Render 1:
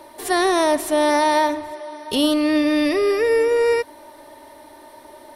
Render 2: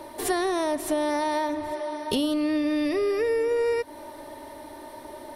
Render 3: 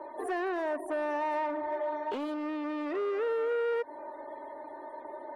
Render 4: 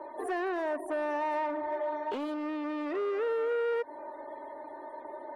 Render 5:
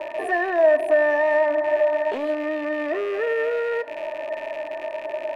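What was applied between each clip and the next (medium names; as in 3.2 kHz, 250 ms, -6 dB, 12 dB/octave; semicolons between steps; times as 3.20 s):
bass shelf 430 Hz +6 dB; compression 6:1, threshold -23 dBFS, peak gain reduction 12 dB
loudest bins only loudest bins 64; hard clipper -26.5 dBFS, distortion -10 dB; three-band isolator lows -22 dB, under 330 Hz, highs -18 dB, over 2.2 kHz
no audible change
rattle on loud lows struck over -60 dBFS, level -33 dBFS; small resonant body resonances 640/1800 Hz, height 16 dB, ringing for 40 ms; on a send at -15.5 dB: reverberation, pre-delay 5 ms; on the sum: trim +3.5 dB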